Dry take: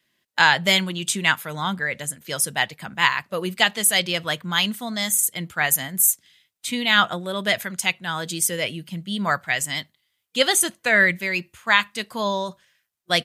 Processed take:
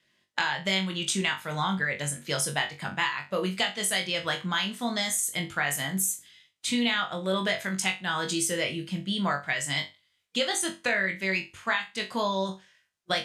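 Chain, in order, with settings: LPF 7900 Hz 12 dB/oct; compressor 10:1, threshold -25 dBFS, peak gain reduction 14.5 dB; flutter echo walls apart 3.6 m, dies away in 0.25 s

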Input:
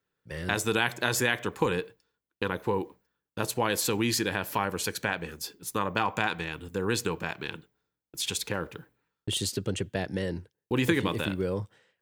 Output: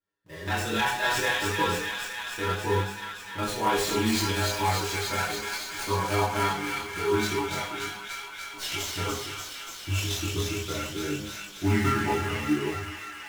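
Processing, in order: speed glide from 104% -> 77%; metallic resonator 100 Hz, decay 0.21 s, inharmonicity 0.002; on a send: thin delay 0.291 s, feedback 79%, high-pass 1600 Hz, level -3.5 dB; on the sum: reverb, pre-delay 3 ms, DRR -6.5 dB; in parallel at -3 dB: companded quantiser 4-bit; on the sum: chorus voices 2, 0.66 Hz, delay 22 ms, depth 2.8 ms; running maximum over 3 samples

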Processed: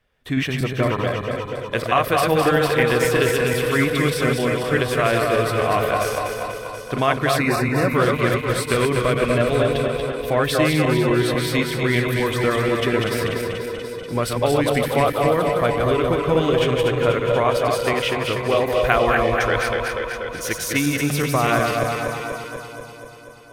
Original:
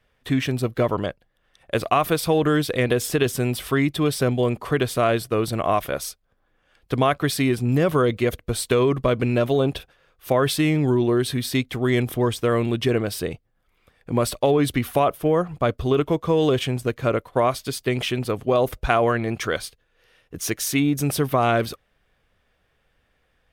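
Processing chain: regenerating reverse delay 0.122 s, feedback 73%, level -4 dB; repeats that get brighter 0.242 s, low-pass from 750 Hz, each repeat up 2 oct, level -6 dB; dynamic EQ 1900 Hz, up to +7 dB, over -37 dBFS, Q 0.96; 7.38–7.95 Butterworth band-stop 3200 Hz, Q 3.2; gain -2.5 dB

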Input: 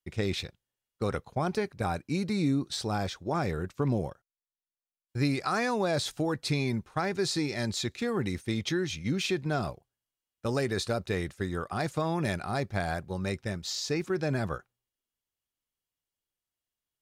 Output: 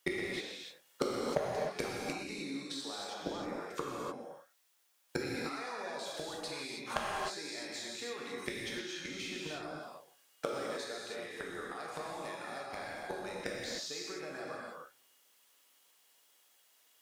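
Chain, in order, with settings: HPF 470 Hz 12 dB/oct; compressor 4:1, threshold -37 dBFS, peak gain reduction 10 dB; flipped gate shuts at -37 dBFS, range -25 dB; hard clip -37.5 dBFS, distortion -9 dB; non-linear reverb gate 0.34 s flat, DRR -4 dB; gain +18 dB

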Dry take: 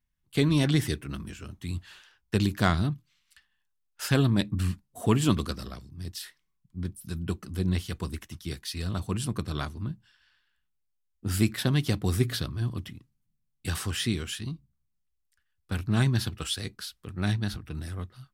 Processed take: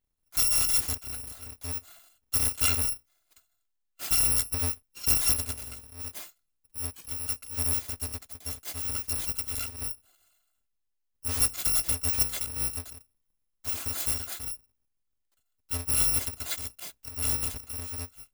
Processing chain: FFT order left unsorted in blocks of 256 samples; gain -1.5 dB

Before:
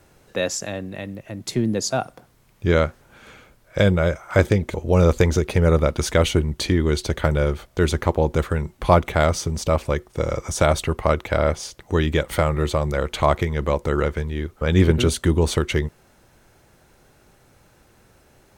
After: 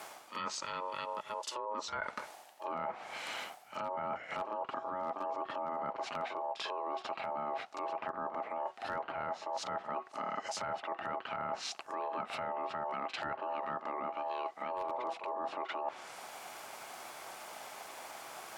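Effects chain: ring modulator 740 Hz; treble ducked by the level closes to 1200 Hz, closed at -19.5 dBFS; HPF 910 Hz 6 dB/oct; reverse echo 44 ms -17 dB; wavefolder -14.5 dBFS; limiter -26.5 dBFS, peak gain reduction 12 dB; reverse; compressor 5:1, threshold -51 dBFS, peak gain reduction 18 dB; reverse; gain +13.5 dB

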